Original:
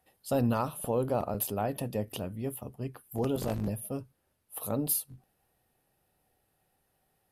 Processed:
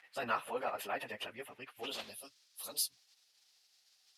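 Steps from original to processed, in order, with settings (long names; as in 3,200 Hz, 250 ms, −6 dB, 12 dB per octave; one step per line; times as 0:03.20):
dynamic equaliser 140 Hz, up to −6 dB, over −45 dBFS, Q 0.97
surface crackle 180 per second −52 dBFS
band-pass filter sweep 2,000 Hz → 4,800 Hz, 0:02.64–0:04.09
time stretch by phase vocoder 0.57×
level +14 dB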